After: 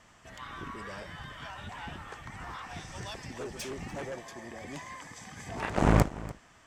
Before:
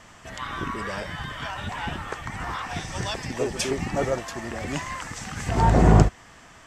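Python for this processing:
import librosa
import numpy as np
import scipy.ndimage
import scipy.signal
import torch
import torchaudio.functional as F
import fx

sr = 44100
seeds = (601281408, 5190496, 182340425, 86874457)

y = fx.notch_comb(x, sr, f0_hz=1400.0, at=(4.02, 5.77))
y = fx.cheby_harmonics(y, sr, harmonics=(5, 7), levels_db=(-28, -11), full_scale_db=-2.5)
y = y + 10.0 ** (-18.0 / 20.0) * np.pad(y, (int(292 * sr / 1000.0), 0))[:len(y)]
y = y * librosa.db_to_amplitude(-7.5)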